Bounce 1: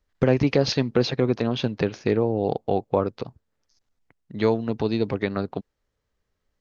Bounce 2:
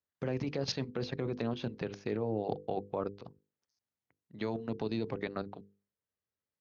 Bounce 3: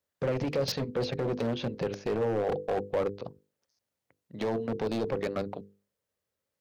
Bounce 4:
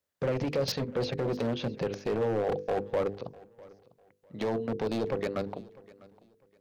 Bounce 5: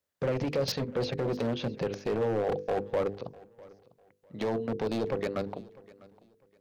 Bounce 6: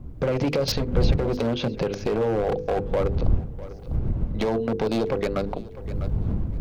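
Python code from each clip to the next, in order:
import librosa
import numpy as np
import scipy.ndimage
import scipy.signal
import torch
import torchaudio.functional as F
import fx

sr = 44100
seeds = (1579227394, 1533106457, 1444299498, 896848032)

y1 = scipy.signal.sosfilt(scipy.signal.butter(4, 83.0, 'highpass', fs=sr, output='sos'), x)
y1 = fx.level_steps(y1, sr, step_db=13)
y1 = fx.hum_notches(y1, sr, base_hz=50, count=10)
y1 = y1 * librosa.db_to_amplitude(-6.5)
y2 = np.clip(y1, -10.0 ** (-34.0 / 20.0), 10.0 ** (-34.0 / 20.0))
y2 = fx.peak_eq(y2, sr, hz=540.0, db=8.0, octaves=0.48)
y2 = y2 * librosa.db_to_amplitude(6.5)
y3 = fx.echo_feedback(y2, sr, ms=650, feedback_pct=26, wet_db=-22.0)
y4 = y3
y5 = fx.dmg_wind(y4, sr, seeds[0], corner_hz=96.0, level_db=-33.0)
y5 = fx.recorder_agc(y5, sr, target_db=-21.0, rise_db_per_s=21.0, max_gain_db=30)
y5 = fx.notch(y5, sr, hz=1800.0, q=14.0)
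y5 = y5 * librosa.db_to_amplitude(4.5)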